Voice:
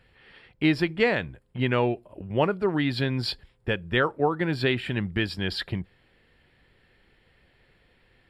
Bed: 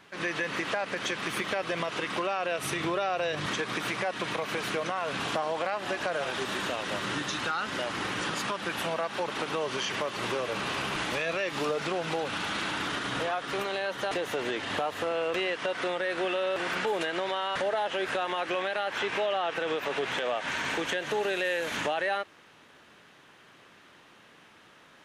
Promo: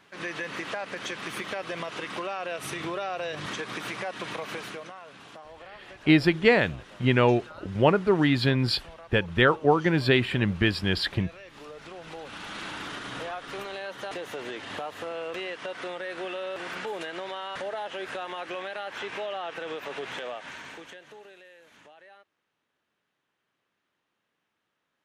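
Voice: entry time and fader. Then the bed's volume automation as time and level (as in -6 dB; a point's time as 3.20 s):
5.45 s, +3.0 dB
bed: 4.52 s -3 dB
5.14 s -16.5 dB
11.50 s -16.5 dB
12.66 s -5 dB
20.22 s -5 dB
21.51 s -24 dB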